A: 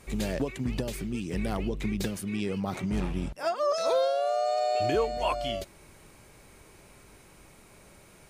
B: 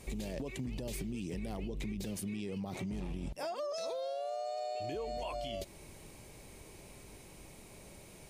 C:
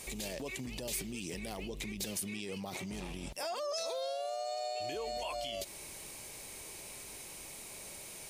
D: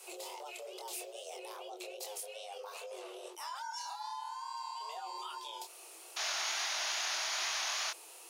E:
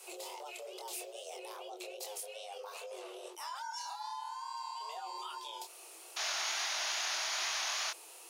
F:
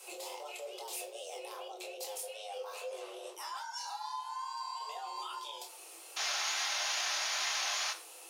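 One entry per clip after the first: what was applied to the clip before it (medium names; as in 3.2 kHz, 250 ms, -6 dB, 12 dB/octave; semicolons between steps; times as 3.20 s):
peaking EQ 1.4 kHz -9.5 dB 0.79 oct; peak limiter -27.5 dBFS, peak gain reduction 10.5 dB; compression, threshold -37 dBFS, peak gain reduction 6 dB; trim +1.5 dB
bass shelf 380 Hz -11.5 dB; peak limiter -36.5 dBFS, peak gain reduction 6.5 dB; treble shelf 3.6 kHz +7 dB; trim +5.5 dB
painted sound noise, 6.16–7.91 s, 270–6600 Hz -31 dBFS; frequency shift +320 Hz; chorus 2.4 Hz, depth 5.5 ms; trim -2 dB
no audible change
reverberation RT60 0.45 s, pre-delay 4 ms, DRR 3.5 dB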